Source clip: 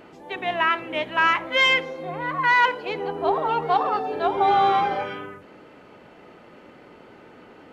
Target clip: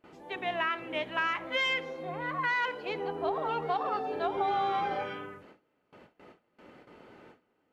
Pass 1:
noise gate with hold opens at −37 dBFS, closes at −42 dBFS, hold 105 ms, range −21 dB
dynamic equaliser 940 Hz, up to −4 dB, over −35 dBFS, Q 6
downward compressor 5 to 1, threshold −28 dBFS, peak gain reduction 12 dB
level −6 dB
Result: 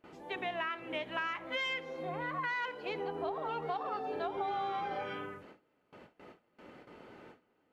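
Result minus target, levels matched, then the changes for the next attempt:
downward compressor: peak gain reduction +6.5 dB
change: downward compressor 5 to 1, threshold −20 dBFS, peak gain reduction 5.5 dB

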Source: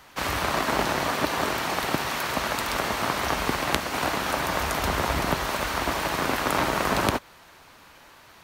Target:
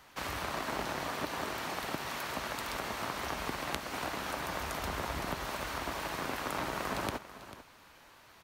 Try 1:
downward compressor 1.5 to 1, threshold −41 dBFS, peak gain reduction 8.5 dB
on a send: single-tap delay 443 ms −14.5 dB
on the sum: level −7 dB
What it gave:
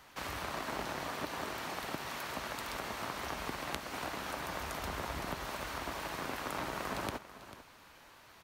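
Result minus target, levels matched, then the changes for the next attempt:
downward compressor: peak gain reduction +2.5 dB
change: downward compressor 1.5 to 1, threshold −33 dBFS, peak gain reduction 6 dB

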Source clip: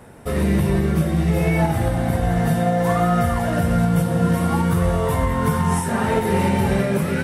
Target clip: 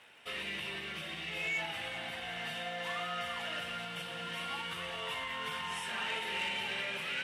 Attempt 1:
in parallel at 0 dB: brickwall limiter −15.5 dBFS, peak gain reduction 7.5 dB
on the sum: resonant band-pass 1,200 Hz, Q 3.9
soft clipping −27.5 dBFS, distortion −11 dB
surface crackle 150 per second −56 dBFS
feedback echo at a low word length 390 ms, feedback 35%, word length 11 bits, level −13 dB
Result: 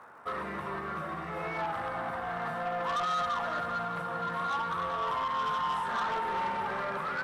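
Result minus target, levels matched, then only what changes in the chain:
4,000 Hz band −11.5 dB
change: resonant band-pass 2,900 Hz, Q 3.9

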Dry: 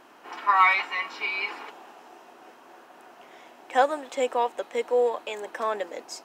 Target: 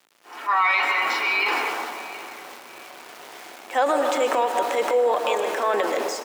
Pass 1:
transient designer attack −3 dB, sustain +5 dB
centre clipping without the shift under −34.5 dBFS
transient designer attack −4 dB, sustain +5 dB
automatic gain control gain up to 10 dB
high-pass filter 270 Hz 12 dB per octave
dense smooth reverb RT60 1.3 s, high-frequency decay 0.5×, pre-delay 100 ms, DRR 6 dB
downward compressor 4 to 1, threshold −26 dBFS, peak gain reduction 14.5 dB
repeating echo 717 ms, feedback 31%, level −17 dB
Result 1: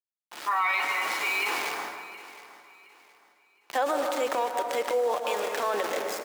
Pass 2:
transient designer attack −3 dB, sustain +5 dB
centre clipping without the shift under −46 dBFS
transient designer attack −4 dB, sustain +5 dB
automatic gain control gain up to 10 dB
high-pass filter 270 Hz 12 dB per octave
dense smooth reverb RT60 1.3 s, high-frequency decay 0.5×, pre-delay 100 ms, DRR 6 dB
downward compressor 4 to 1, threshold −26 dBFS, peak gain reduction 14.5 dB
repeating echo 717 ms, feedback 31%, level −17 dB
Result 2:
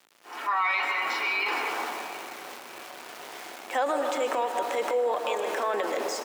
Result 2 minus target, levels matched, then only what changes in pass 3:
downward compressor: peak gain reduction +6 dB
change: downward compressor 4 to 1, threshold −18 dBFS, peak gain reduction 8.5 dB

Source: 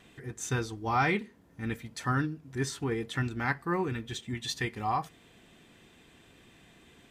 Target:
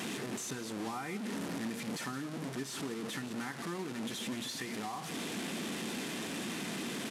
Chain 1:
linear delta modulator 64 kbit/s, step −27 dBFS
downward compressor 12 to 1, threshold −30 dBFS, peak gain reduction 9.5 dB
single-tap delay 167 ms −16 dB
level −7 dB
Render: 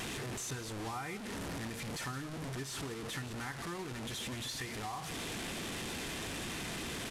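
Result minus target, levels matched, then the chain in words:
250 Hz band −4.0 dB
linear delta modulator 64 kbit/s, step −27 dBFS
downward compressor 12 to 1, threshold −30 dBFS, peak gain reduction 9.5 dB
high-pass with resonance 210 Hz, resonance Q 2.1
single-tap delay 167 ms −16 dB
level −7 dB

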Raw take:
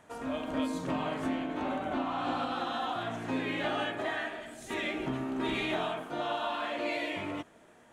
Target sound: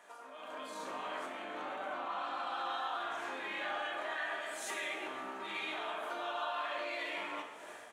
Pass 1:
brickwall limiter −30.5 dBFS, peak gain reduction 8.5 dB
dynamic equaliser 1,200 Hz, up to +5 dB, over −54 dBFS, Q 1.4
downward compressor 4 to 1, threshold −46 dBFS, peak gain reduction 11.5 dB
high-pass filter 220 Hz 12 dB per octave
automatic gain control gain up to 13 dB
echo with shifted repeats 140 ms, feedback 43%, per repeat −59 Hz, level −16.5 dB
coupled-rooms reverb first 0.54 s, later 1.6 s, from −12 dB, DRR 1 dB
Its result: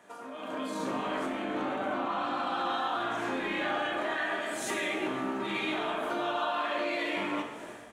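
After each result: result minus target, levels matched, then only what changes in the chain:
250 Hz band +9.0 dB; downward compressor: peak gain reduction −5.5 dB
change: high-pass filter 580 Hz 12 dB per octave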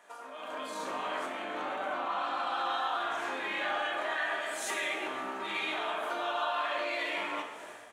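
downward compressor: peak gain reduction −5.5 dB
change: downward compressor 4 to 1, threshold −53.5 dBFS, peak gain reduction 17 dB

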